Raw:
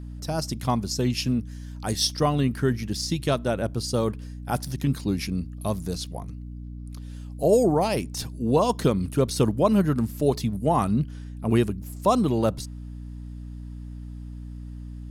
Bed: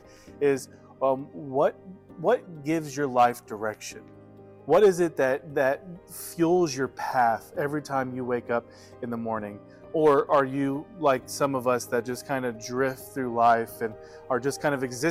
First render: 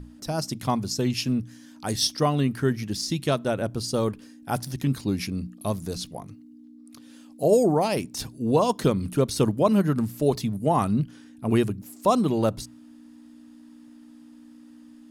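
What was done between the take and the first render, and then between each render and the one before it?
notches 60/120/180 Hz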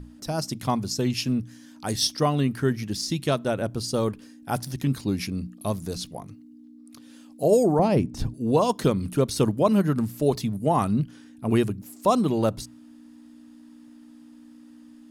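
7.79–8.34 tilt -3.5 dB/oct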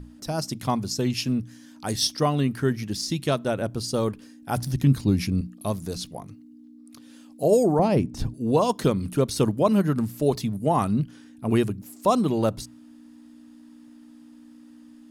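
4.57–5.41 low shelf 180 Hz +11 dB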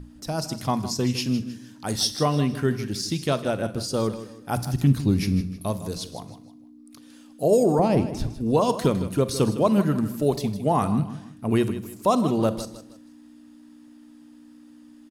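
feedback echo 0.157 s, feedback 34%, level -13 dB; Schroeder reverb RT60 0.51 s, combs from 32 ms, DRR 14 dB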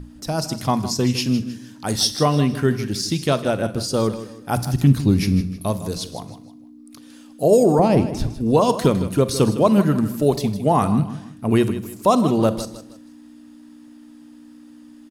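gain +4.5 dB

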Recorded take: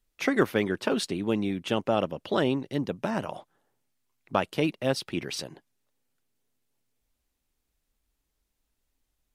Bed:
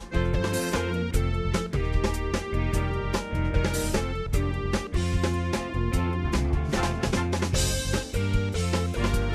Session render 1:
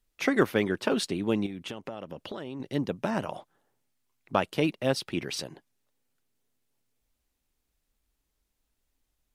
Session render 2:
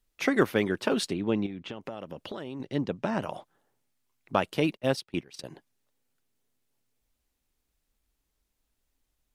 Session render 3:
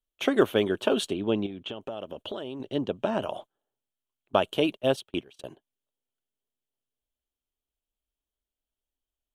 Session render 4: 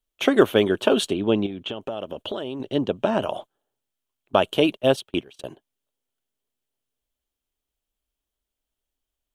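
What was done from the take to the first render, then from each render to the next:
1.46–2.6 compressor 10:1, threshold -33 dBFS
1.13–1.81 air absorption 130 m; 2.65–3.22 air absorption 59 m; 4.77–5.44 gate -33 dBFS, range -19 dB
thirty-one-band EQ 160 Hz -8 dB, 400 Hz +4 dB, 630 Hz +6 dB, 2000 Hz -9 dB, 3150 Hz +10 dB, 5000 Hz -11 dB; gate -43 dBFS, range -14 dB
gain +5.5 dB; limiter -3 dBFS, peak gain reduction 2 dB

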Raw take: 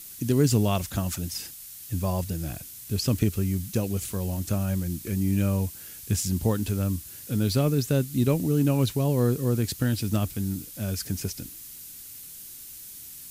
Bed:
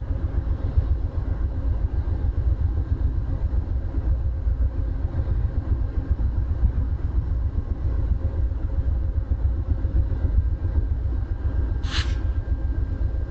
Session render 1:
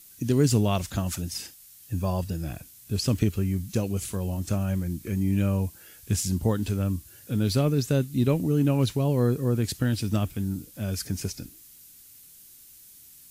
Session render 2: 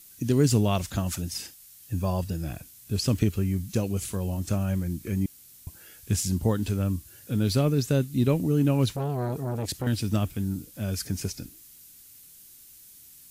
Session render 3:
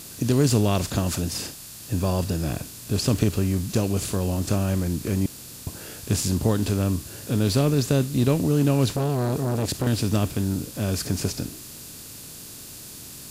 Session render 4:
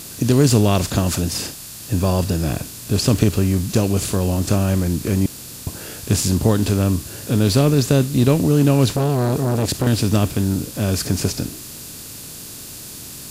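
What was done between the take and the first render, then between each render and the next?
noise print and reduce 8 dB
5.26–5.67 room tone; 8.96–9.87 core saturation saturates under 670 Hz
per-bin compression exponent 0.6
gain +5.5 dB

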